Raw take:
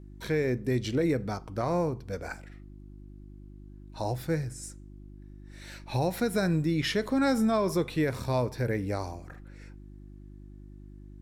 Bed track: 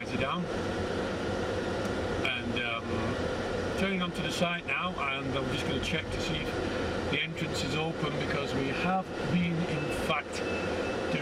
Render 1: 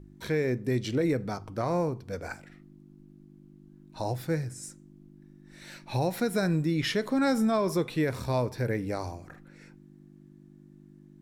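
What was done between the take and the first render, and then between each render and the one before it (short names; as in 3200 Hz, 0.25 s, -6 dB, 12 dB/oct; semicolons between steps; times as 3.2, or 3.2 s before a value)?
de-hum 50 Hz, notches 2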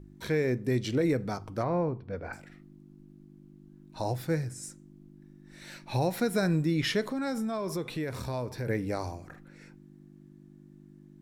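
1.63–2.33 air absorption 330 m; 7.01–8.67 compressor 2.5:1, threshold -32 dBFS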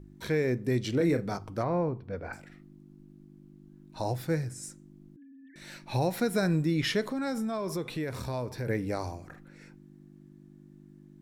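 0.96–1.37 doubler 35 ms -8 dB; 5.16–5.56 sine-wave speech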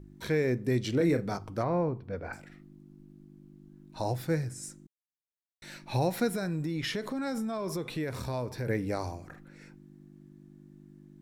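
4.87–5.62 mute; 6.32–7.95 compressor, threshold -29 dBFS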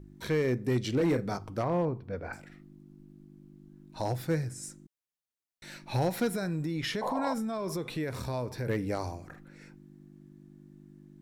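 7.01–7.34 painted sound noise 480–1100 Hz -33 dBFS; hard clip -21.5 dBFS, distortion -21 dB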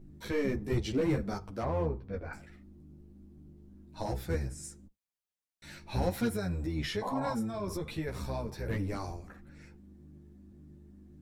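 octaver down 1 oct, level -2 dB; ensemble effect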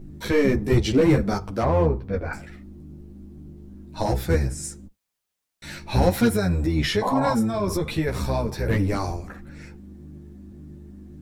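gain +11.5 dB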